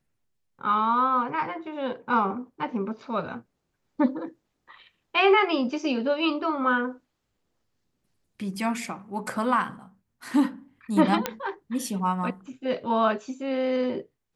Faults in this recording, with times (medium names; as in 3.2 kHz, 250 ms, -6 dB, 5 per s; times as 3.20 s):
11.26 s: pop -9 dBFS